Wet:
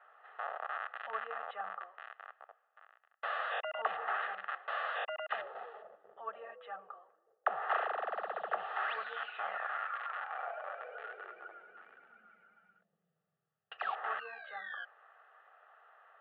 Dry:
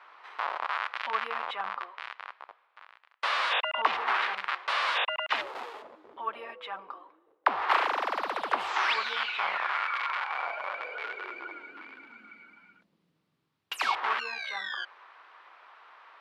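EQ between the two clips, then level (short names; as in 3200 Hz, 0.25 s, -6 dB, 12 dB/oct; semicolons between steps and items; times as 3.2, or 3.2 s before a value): speaker cabinet 190–2000 Hz, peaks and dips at 250 Hz -9 dB, 370 Hz -4 dB, 550 Hz -5 dB, 910 Hz -4 dB, 1500 Hz -9 dB; fixed phaser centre 1500 Hz, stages 8; +1.0 dB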